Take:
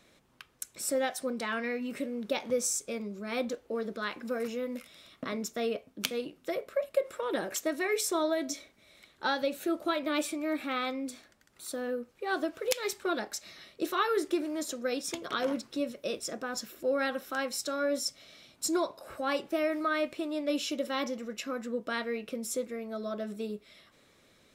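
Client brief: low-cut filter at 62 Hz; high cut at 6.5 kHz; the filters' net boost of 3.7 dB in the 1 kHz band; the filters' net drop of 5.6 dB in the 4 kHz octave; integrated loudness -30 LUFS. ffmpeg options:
-af "highpass=62,lowpass=6500,equalizer=f=1000:t=o:g=5.5,equalizer=f=4000:t=o:g=-7,volume=1.33"

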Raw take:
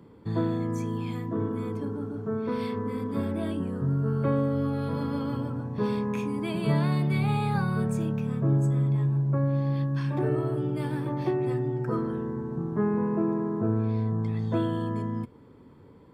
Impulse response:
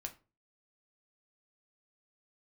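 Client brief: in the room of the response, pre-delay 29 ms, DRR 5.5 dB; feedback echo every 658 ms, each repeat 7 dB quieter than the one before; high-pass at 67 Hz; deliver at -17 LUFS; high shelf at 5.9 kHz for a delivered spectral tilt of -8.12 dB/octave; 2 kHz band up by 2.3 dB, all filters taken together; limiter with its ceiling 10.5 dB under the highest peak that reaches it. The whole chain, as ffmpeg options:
-filter_complex "[0:a]highpass=67,equalizer=f=2000:t=o:g=3.5,highshelf=f=5900:g=-4.5,alimiter=limit=0.075:level=0:latency=1,aecho=1:1:658|1316|1974|2632|3290:0.447|0.201|0.0905|0.0407|0.0183,asplit=2[s0][s1];[1:a]atrim=start_sample=2205,adelay=29[s2];[s1][s2]afir=irnorm=-1:irlink=0,volume=0.708[s3];[s0][s3]amix=inputs=2:normalize=0,volume=3.16"

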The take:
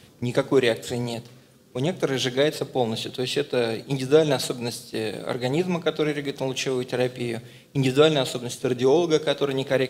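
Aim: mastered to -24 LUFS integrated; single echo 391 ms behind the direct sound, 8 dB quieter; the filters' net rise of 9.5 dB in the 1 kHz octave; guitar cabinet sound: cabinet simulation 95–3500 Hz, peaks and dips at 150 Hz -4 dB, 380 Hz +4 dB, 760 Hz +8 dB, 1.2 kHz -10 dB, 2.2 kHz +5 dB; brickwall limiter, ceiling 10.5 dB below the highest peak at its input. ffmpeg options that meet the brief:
-af "equalizer=f=1000:t=o:g=8,alimiter=limit=0.211:level=0:latency=1,highpass=95,equalizer=f=150:t=q:w=4:g=-4,equalizer=f=380:t=q:w=4:g=4,equalizer=f=760:t=q:w=4:g=8,equalizer=f=1200:t=q:w=4:g=-10,equalizer=f=2200:t=q:w=4:g=5,lowpass=f=3500:w=0.5412,lowpass=f=3500:w=1.3066,aecho=1:1:391:0.398"

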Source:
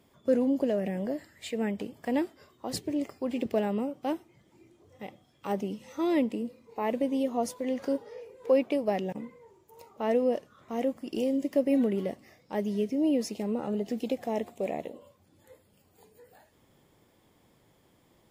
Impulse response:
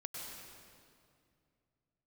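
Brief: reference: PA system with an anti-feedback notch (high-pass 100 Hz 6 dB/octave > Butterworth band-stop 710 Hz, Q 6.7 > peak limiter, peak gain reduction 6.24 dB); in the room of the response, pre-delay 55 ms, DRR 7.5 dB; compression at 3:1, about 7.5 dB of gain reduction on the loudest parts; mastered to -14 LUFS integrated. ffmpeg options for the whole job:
-filter_complex "[0:a]acompressor=threshold=0.0355:ratio=3,asplit=2[s0][s1];[1:a]atrim=start_sample=2205,adelay=55[s2];[s1][s2]afir=irnorm=-1:irlink=0,volume=0.473[s3];[s0][s3]amix=inputs=2:normalize=0,highpass=f=100:p=1,asuperstop=centerf=710:order=8:qfactor=6.7,volume=13.3,alimiter=limit=0.631:level=0:latency=1"

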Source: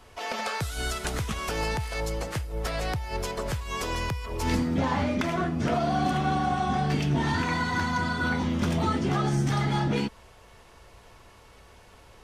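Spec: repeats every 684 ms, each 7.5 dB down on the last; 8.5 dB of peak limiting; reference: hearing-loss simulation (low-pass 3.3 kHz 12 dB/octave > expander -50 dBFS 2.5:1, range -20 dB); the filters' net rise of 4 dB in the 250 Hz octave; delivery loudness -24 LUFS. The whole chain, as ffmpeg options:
-af "equalizer=f=250:t=o:g=5,alimiter=limit=0.106:level=0:latency=1,lowpass=3300,aecho=1:1:684|1368|2052|2736|3420:0.422|0.177|0.0744|0.0312|0.0131,agate=range=0.1:threshold=0.00316:ratio=2.5,volume=1.68"

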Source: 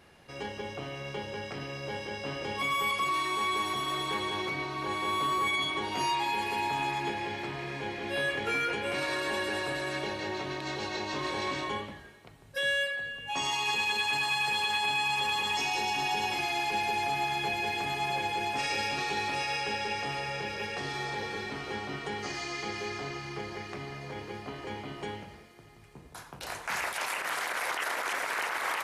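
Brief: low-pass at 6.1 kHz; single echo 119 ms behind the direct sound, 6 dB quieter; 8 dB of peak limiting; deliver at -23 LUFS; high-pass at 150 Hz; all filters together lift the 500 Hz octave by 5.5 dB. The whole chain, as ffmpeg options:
-af "highpass=150,lowpass=6100,equalizer=f=500:t=o:g=7,alimiter=level_in=1.06:limit=0.0631:level=0:latency=1,volume=0.944,aecho=1:1:119:0.501,volume=2.66"

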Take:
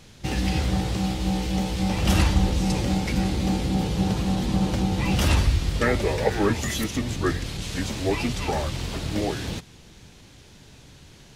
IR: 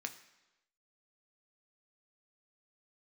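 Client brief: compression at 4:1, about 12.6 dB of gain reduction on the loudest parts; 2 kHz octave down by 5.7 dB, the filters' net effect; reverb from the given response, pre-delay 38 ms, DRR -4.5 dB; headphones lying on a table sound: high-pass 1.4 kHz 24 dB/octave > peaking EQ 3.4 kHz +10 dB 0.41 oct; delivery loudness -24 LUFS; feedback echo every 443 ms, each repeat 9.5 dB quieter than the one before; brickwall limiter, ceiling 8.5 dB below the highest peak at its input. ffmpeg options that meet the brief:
-filter_complex "[0:a]equalizer=f=2000:t=o:g=-8.5,acompressor=threshold=0.0282:ratio=4,alimiter=level_in=1.5:limit=0.0631:level=0:latency=1,volume=0.668,aecho=1:1:443|886|1329|1772:0.335|0.111|0.0365|0.012,asplit=2[s0][s1];[1:a]atrim=start_sample=2205,adelay=38[s2];[s1][s2]afir=irnorm=-1:irlink=0,volume=1.78[s3];[s0][s3]amix=inputs=2:normalize=0,highpass=f=1400:w=0.5412,highpass=f=1400:w=1.3066,equalizer=f=3400:t=o:w=0.41:g=10,volume=4.22"

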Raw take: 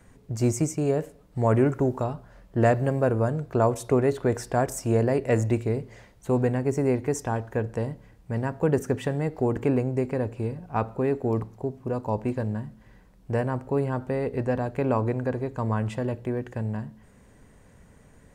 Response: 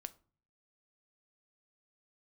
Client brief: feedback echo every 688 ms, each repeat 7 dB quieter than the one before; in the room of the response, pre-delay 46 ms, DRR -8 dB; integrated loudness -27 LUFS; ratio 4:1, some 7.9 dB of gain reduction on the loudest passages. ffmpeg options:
-filter_complex "[0:a]acompressor=threshold=0.0501:ratio=4,aecho=1:1:688|1376|2064|2752|3440:0.447|0.201|0.0905|0.0407|0.0183,asplit=2[s0][s1];[1:a]atrim=start_sample=2205,adelay=46[s2];[s1][s2]afir=irnorm=-1:irlink=0,volume=4.22[s3];[s0][s3]amix=inputs=2:normalize=0,volume=0.562"

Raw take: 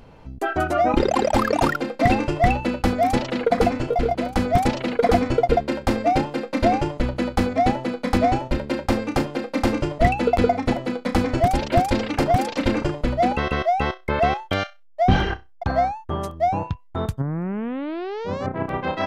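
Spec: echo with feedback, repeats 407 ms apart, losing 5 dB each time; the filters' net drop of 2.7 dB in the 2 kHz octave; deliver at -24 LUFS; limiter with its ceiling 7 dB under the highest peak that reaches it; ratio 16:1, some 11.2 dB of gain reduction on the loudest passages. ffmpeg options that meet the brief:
-af "equalizer=f=2000:t=o:g=-3.5,acompressor=threshold=0.0708:ratio=16,alimiter=limit=0.106:level=0:latency=1,aecho=1:1:407|814|1221|1628|2035|2442|2849:0.562|0.315|0.176|0.0988|0.0553|0.031|0.0173,volume=1.78"

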